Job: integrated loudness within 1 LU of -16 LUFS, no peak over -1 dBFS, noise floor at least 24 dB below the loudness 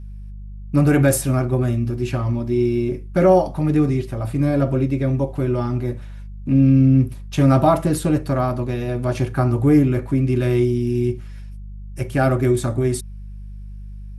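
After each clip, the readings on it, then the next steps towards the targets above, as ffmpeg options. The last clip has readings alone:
hum 50 Hz; harmonics up to 200 Hz; hum level -31 dBFS; loudness -19.0 LUFS; peak -3.5 dBFS; loudness target -16.0 LUFS
-> -af "bandreject=f=50:t=h:w=4,bandreject=f=100:t=h:w=4,bandreject=f=150:t=h:w=4,bandreject=f=200:t=h:w=4"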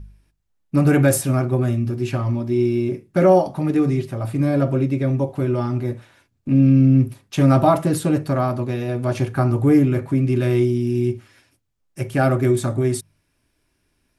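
hum none; loudness -19.5 LUFS; peak -3.5 dBFS; loudness target -16.0 LUFS
-> -af "volume=3.5dB,alimiter=limit=-1dB:level=0:latency=1"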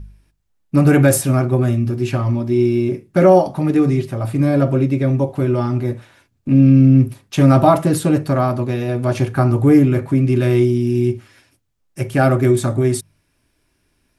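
loudness -16.0 LUFS; peak -1.0 dBFS; noise floor -65 dBFS

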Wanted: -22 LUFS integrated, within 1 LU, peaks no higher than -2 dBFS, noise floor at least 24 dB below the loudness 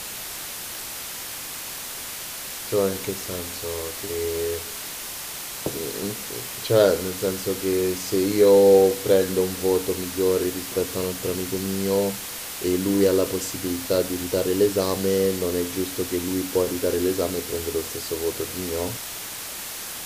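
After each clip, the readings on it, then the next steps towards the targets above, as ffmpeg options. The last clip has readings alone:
noise floor -34 dBFS; noise floor target -48 dBFS; loudness -24.0 LUFS; peak -4.0 dBFS; loudness target -22.0 LUFS
-> -af "afftdn=nr=14:nf=-34"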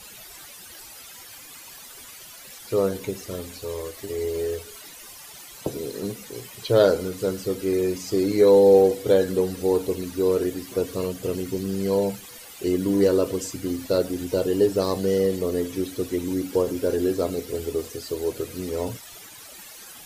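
noise floor -44 dBFS; noise floor target -48 dBFS
-> -af "afftdn=nr=6:nf=-44"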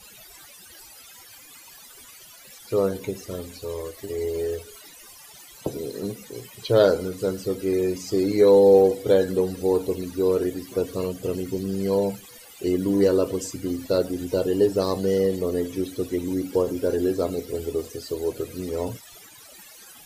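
noise floor -47 dBFS; noise floor target -48 dBFS
-> -af "afftdn=nr=6:nf=-47"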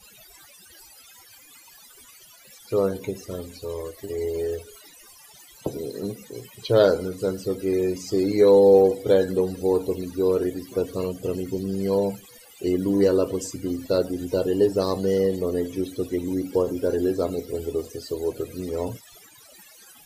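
noise floor -50 dBFS; loudness -24.0 LUFS; peak -4.5 dBFS; loudness target -22.0 LUFS
-> -af "volume=2dB"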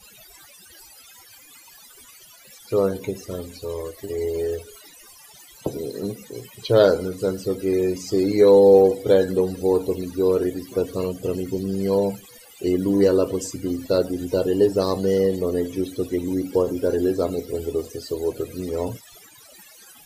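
loudness -22.0 LUFS; peak -2.5 dBFS; noise floor -48 dBFS

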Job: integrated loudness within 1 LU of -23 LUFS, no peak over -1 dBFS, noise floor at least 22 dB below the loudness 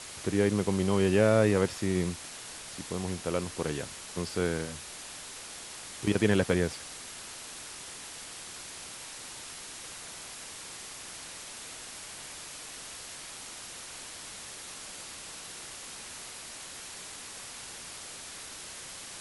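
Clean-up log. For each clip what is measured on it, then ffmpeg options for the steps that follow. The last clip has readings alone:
noise floor -44 dBFS; noise floor target -56 dBFS; loudness -33.5 LUFS; peak -10.0 dBFS; loudness target -23.0 LUFS
-> -af "afftdn=nr=12:nf=-44"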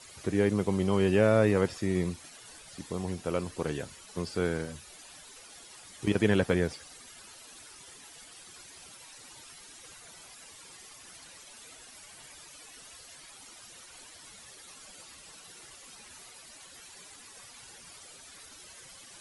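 noise floor -51 dBFS; loudness -29.0 LUFS; peak -10.0 dBFS; loudness target -23.0 LUFS
-> -af "volume=6dB"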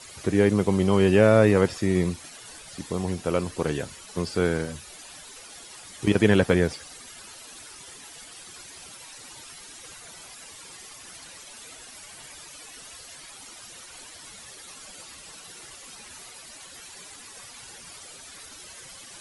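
loudness -23.0 LUFS; peak -4.0 dBFS; noise floor -45 dBFS

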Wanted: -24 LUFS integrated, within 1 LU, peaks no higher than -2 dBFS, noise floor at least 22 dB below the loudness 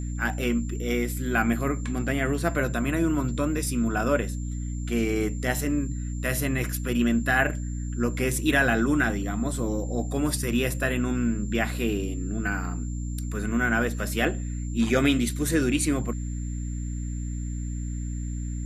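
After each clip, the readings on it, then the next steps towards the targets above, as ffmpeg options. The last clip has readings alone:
hum 60 Hz; harmonics up to 300 Hz; hum level -28 dBFS; steady tone 7300 Hz; tone level -46 dBFS; loudness -26.5 LUFS; peak -8.5 dBFS; loudness target -24.0 LUFS
-> -af "bandreject=f=60:t=h:w=4,bandreject=f=120:t=h:w=4,bandreject=f=180:t=h:w=4,bandreject=f=240:t=h:w=4,bandreject=f=300:t=h:w=4"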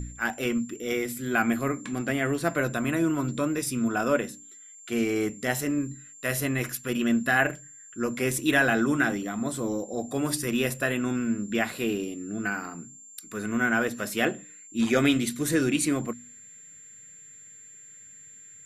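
hum none; steady tone 7300 Hz; tone level -46 dBFS
-> -af "bandreject=f=7.3k:w=30"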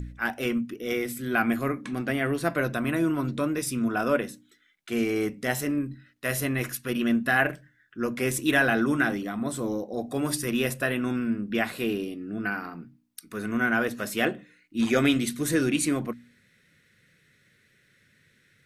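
steady tone none; loudness -27.0 LUFS; peak -9.0 dBFS; loudness target -24.0 LUFS
-> -af "volume=3dB"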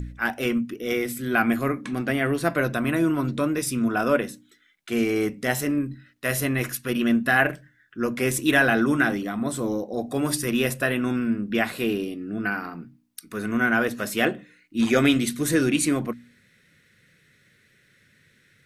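loudness -24.0 LUFS; peak -6.0 dBFS; noise floor -61 dBFS

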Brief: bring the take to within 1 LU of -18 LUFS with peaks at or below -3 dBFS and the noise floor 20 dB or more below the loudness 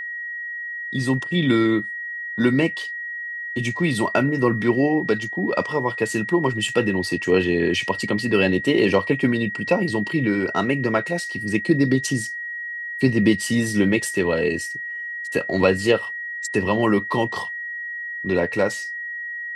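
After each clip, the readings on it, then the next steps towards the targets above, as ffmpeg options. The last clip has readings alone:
steady tone 1900 Hz; tone level -28 dBFS; loudness -22.0 LUFS; peak -3.5 dBFS; loudness target -18.0 LUFS
-> -af "bandreject=f=1.9k:w=30"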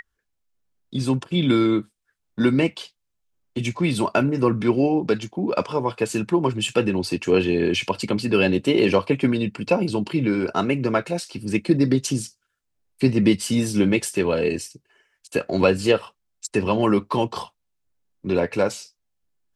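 steady tone none; loudness -22.0 LUFS; peak -4.0 dBFS; loudness target -18.0 LUFS
-> -af "volume=4dB,alimiter=limit=-3dB:level=0:latency=1"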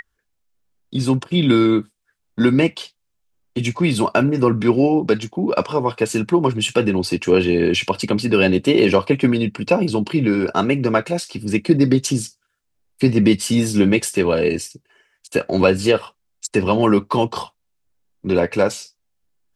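loudness -18.0 LUFS; peak -3.0 dBFS; noise floor -72 dBFS

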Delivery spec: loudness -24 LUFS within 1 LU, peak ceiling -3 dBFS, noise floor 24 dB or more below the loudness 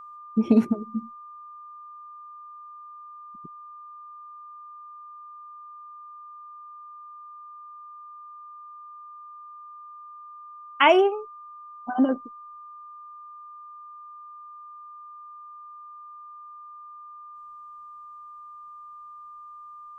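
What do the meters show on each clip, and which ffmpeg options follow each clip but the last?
steady tone 1200 Hz; tone level -41 dBFS; loudness -23.0 LUFS; peak -4.0 dBFS; loudness target -24.0 LUFS
-> -af "bandreject=f=1.2k:w=30"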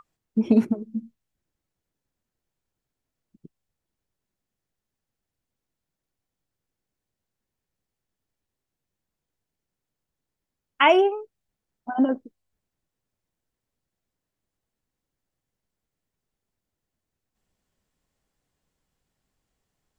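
steady tone none; loudness -22.5 LUFS; peak -4.5 dBFS; loudness target -24.0 LUFS
-> -af "volume=-1.5dB"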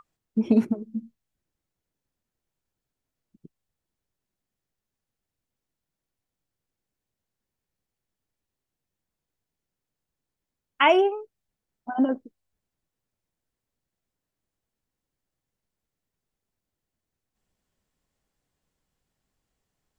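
loudness -24.0 LUFS; peak -6.0 dBFS; noise floor -87 dBFS

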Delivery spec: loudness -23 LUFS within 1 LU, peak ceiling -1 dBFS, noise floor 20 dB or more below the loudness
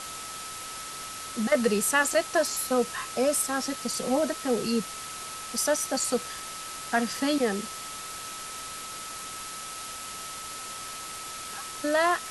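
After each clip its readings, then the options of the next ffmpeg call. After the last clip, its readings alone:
steady tone 1300 Hz; tone level -41 dBFS; noise floor -39 dBFS; noise floor target -49 dBFS; loudness -29.0 LUFS; peak -10.0 dBFS; loudness target -23.0 LUFS
-> -af "bandreject=f=1.3k:w=30"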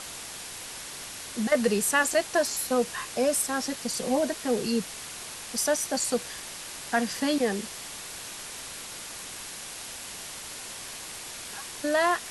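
steady tone none; noise floor -40 dBFS; noise floor target -49 dBFS
-> -af "afftdn=nr=9:nf=-40"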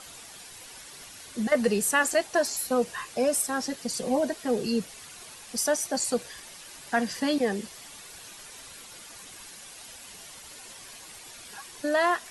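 noise floor -46 dBFS; noise floor target -47 dBFS
-> -af "afftdn=nr=6:nf=-46"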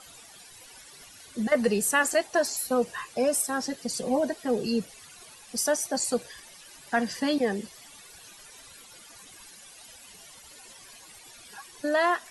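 noise floor -50 dBFS; loudness -27.0 LUFS; peak -11.0 dBFS; loudness target -23.0 LUFS
-> -af "volume=4dB"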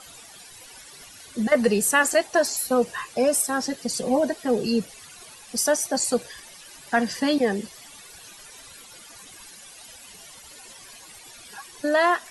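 loudness -23.0 LUFS; peak -7.0 dBFS; noise floor -46 dBFS

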